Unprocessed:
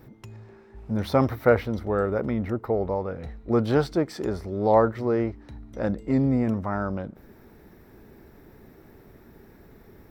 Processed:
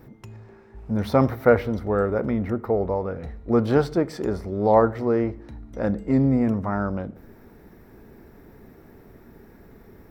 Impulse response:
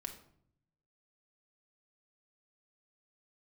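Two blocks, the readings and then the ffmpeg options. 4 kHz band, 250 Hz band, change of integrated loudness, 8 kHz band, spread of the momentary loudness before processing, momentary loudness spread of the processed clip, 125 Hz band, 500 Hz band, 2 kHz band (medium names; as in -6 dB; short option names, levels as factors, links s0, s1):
-1.5 dB, +2.5 dB, +2.5 dB, no reading, 10 LU, 10 LU, +2.0 dB, +2.0 dB, +1.5 dB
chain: -filter_complex "[0:a]asplit=2[s0][s1];[s1]lowpass=f=4000:w=0.5412,lowpass=f=4000:w=1.3066[s2];[1:a]atrim=start_sample=2205[s3];[s2][s3]afir=irnorm=-1:irlink=0,volume=0.447[s4];[s0][s4]amix=inputs=2:normalize=0"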